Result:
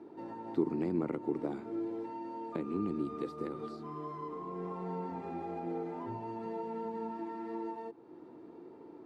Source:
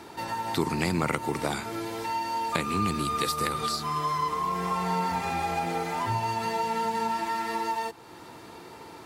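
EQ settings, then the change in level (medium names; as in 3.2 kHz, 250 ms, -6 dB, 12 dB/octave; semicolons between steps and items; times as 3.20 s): band-pass filter 320 Hz, Q 2.2; 0.0 dB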